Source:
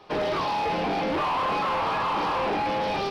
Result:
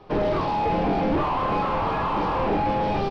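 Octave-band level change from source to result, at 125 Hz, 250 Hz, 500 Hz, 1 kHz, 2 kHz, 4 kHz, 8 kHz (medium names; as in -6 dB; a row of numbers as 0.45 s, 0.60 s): +9.0 dB, +6.0 dB, +3.0 dB, +1.5 dB, -2.5 dB, -5.0 dB, no reading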